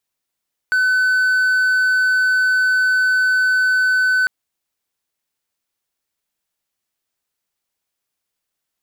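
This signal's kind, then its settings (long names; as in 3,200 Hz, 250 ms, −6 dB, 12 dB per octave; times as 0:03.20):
tone triangle 1,510 Hz −11 dBFS 3.55 s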